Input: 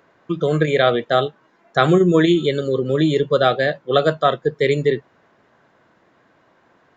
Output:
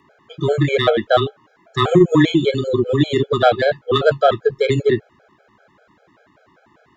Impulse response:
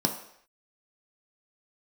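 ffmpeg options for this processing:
-af "aeval=exprs='0.841*(cos(1*acos(clip(val(0)/0.841,-1,1)))-cos(1*PI/2))+0.0266*(cos(5*acos(clip(val(0)/0.841,-1,1)))-cos(5*PI/2))':channel_layout=same,afreqshift=-15,afftfilt=real='re*gt(sin(2*PI*5.1*pts/sr)*(1-2*mod(floor(b*sr/1024/430),2)),0)':imag='im*gt(sin(2*PI*5.1*pts/sr)*(1-2*mod(floor(b*sr/1024/430),2)),0)':win_size=1024:overlap=0.75,volume=4dB"

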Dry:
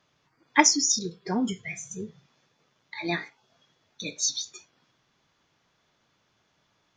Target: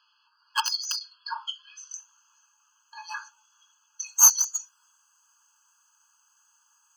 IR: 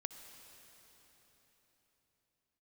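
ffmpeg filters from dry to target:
-af "highpass=frequency=930:poles=1,alimiter=limit=-12.5dB:level=0:latency=1:release=323,aeval=exprs='(mod(5.31*val(0)+1,2)-1)/5.31':channel_layout=same,asetnsamples=nb_out_samples=441:pad=0,asendcmd='1.94 highshelf g 7;4.03 highshelf g 13',highshelf=frequency=5600:width_type=q:width=3:gain=-8,aeval=exprs='clip(val(0),-1,0.0562)':channel_layout=same,afftfilt=real='re*eq(mod(floor(b*sr/1024/840),2),1)':imag='im*eq(mod(floor(b*sr/1024/840),2),1)':win_size=1024:overlap=0.75,volume=6dB"

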